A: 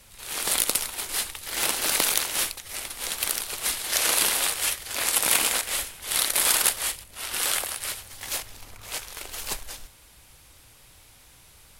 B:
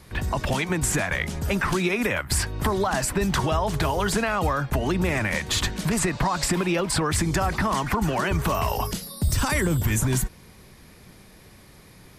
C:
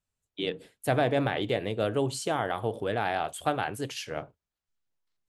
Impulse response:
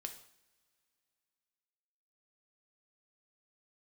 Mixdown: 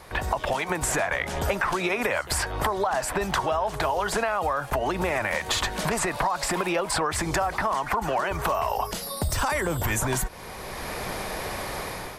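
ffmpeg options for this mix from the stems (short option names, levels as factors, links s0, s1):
-filter_complex "[0:a]acompressor=threshold=0.0355:ratio=1.5,volume=0.158[s0];[1:a]equalizer=f=680:w=0.57:g=13.5,dynaudnorm=f=190:g=5:m=5.62,volume=1.12[s1];[2:a]volume=0.708,asplit=2[s2][s3];[s3]apad=whole_len=520376[s4];[s0][s4]sidechaincompress=threshold=0.00891:ratio=8:attack=16:release=245[s5];[s5][s1][s2]amix=inputs=3:normalize=0,equalizer=f=210:w=0.39:g=-9,acompressor=threshold=0.0708:ratio=6"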